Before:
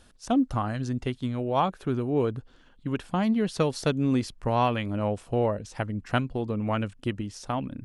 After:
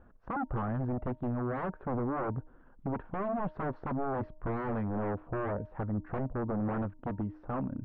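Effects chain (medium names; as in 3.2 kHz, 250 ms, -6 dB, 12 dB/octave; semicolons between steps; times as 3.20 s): wavefolder -27 dBFS; low-pass 1.4 kHz 24 dB/octave; de-hum 308.5 Hz, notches 3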